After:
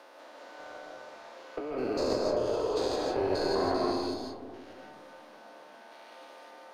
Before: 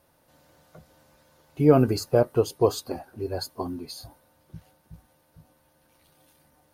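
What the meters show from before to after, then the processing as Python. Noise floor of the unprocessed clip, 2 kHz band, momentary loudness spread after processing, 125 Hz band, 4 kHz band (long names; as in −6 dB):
−65 dBFS, +1.5 dB, 21 LU, −17.0 dB, −0.5 dB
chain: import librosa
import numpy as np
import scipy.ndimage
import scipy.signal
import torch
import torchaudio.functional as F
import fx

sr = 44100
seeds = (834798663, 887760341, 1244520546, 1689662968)

y = fx.spec_steps(x, sr, hold_ms=200)
y = scipy.signal.sosfilt(scipy.signal.bessel(8, 470.0, 'highpass', norm='mag', fs=sr, output='sos'), y)
y = fx.peak_eq(y, sr, hz=11000.0, db=-11.0, octaves=1.0)
y = fx.leveller(y, sr, passes=1)
y = fx.over_compress(y, sr, threshold_db=-35.0, ratio=-1.0)
y = fx.cheby_harmonics(y, sr, harmonics=(2,), levels_db=(-8,), full_scale_db=-21.0)
y = fx.air_absorb(y, sr, metres=57.0)
y = fx.rev_freeverb(y, sr, rt60_s=1.3, hf_ratio=0.25, predelay_ms=110, drr_db=-0.5)
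y = fx.band_squash(y, sr, depth_pct=40)
y = y * librosa.db_to_amplitude(2.0)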